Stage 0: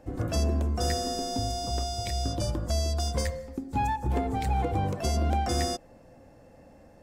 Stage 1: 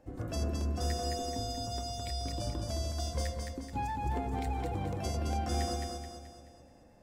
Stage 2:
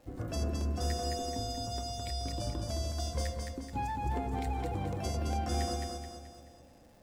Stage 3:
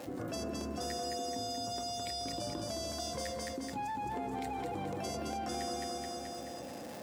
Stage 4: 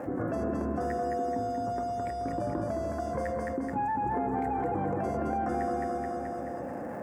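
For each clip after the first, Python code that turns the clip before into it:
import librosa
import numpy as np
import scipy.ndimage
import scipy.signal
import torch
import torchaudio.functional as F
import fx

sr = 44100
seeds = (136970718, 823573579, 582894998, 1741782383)

y1 = fx.echo_feedback(x, sr, ms=215, feedback_pct=46, wet_db=-4.0)
y1 = y1 * 10.0 ** (-8.0 / 20.0)
y2 = fx.dmg_crackle(y1, sr, seeds[0], per_s=480.0, level_db=-56.0)
y3 = scipy.signal.sosfilt(scipy.signal.butter(2, 190.0, 'highpass', fs=sr, output='sos'), y2)
y3 = fx.env_flatten(y3, sr, amount_pct=70)
y3 = y3 * 10.0 ** (-3.0 / 20.0)
y4 = fx.curve_eq(y3, sr, hz=(1700.0, 3700.0, 7700.0), db=(0, -30, -19))
y4 = y4 * 10.0 ** (8.0 / 20.0)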